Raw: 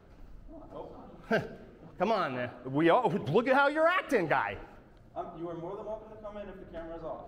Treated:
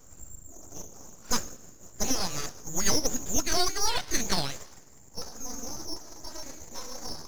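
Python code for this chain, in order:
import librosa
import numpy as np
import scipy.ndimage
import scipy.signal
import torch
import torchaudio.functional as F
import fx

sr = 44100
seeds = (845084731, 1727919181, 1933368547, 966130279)

p1 = fx.pitch_glide(x, sr, semitones=8.5, runs='starting unshifted')
p2 = fx.rider(p1, sr, range_db=3, speed_s=0.5)
p3 = p1 + (p2 * 10.0 ** (-1.0 / 20.0))
p4 = fx.freq_invert(p3, sr, carrier_hz=3700)
p5 = np.abs(p4)
y = p5 * 10.0 ** (-1.0 / 20.0)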